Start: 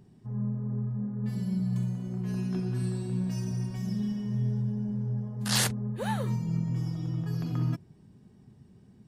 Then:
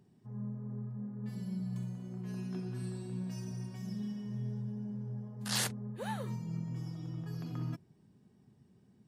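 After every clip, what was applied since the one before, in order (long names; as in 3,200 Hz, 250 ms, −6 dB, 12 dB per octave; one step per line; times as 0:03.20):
high-pass filter 130 Hz 6 dB per octave
level −6.5 dB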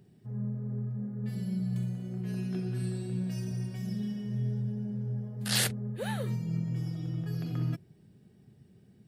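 graphic EQ with 15 bands 250 Hz −5 dB, 1,000 Hz −11 dB, 6,300 Hz −6 dB
level +7.5 dB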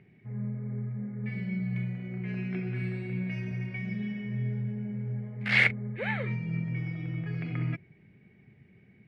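low-pass with resonance 2,200 Hz, resonance Q 14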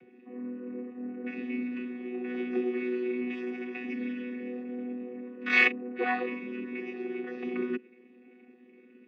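channel vocoder with a chord as carrier bare fifth, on B3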